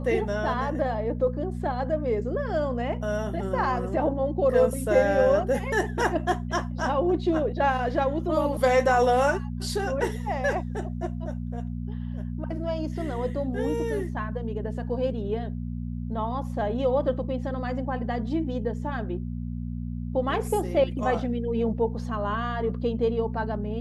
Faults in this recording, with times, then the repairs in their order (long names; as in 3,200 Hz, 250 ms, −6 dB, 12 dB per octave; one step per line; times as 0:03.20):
mains hum 60 Hz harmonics 4 −32 dBFS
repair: hum removal 60 Hz, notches 4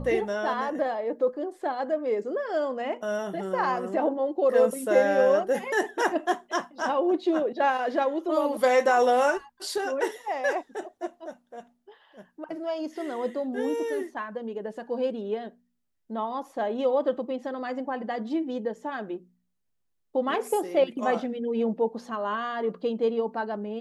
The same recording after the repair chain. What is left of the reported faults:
none of them is left